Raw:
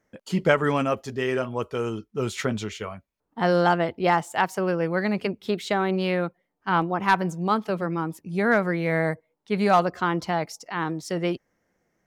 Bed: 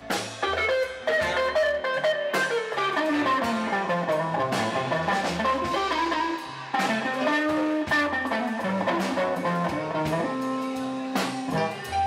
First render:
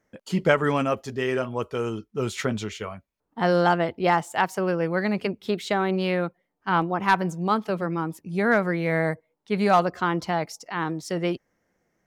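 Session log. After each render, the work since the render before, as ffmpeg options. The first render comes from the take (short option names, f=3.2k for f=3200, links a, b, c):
-af anull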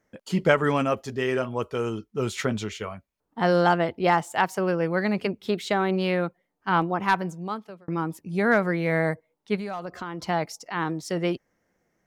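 -filter_complex "[0:a]asplit=3[a][b][c];[a]afade=t=out:st=9.55:d=0.02[d];[b]acompressor=threshold=-30dB:ratio=6:attack=3.2:release=140:knee=1:detection=peak,afade=t=in:st=9.55:d=0.02,afade=t=out:st=10.27:d=0.02[e];[c]afade=t=in:st=10.27:d=0.02[f];[d][e][f]amix=inputs=3:normalize=0,asplit=2[g][h];[g]atrim=end=7.88,asetpts=PTS-STARTPTS,afade=t=out:st=6.91:d=0.97[i];[h]atrim=start=7.88,asetpts=PTS-STARTPTS,afade=t=in:d=0.004:c=hsin[j];[i][j]concat=n=2:v=0:a=1"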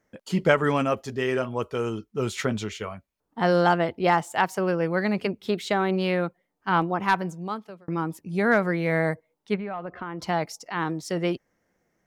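-filter_complex "[0:a]asettb=1/sr,asplit=3[a][b][c];[a]atrim=end=9.544[d];[b]atrim=start=9.54:end=10.19,asetpts=PTS-STARTPTS,afade=t=in:d=0.004:c=qsin,afade=t=out:st=0.646:d=0.004:c=qsin,lowpass=f=2.7k:w=0.5412,lowpass=f=2.7k:w=1.3066[e];[c]atrim=start=10.186[f];[d][e]acrossfade=d=0.004:c1=hsin:c2=qsin[g];[g][f]acrossfade=d=0.004:c1=qsin:c2=hsin"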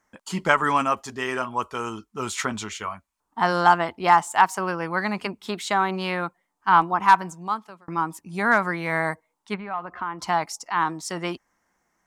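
-af "equalizer=f=125:t=o:w=1:g=-8,equalizer=f=500:t=o:w=1:g=-9,equalizer=f=1k:t=o:w=1:g=11,equalizer=f=8k:t=o:w=1:g=8"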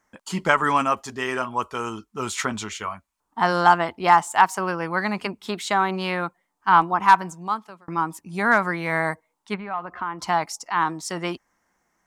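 -af "volume=1dB,alimiter=limit=-2dB:level=0:latency=1"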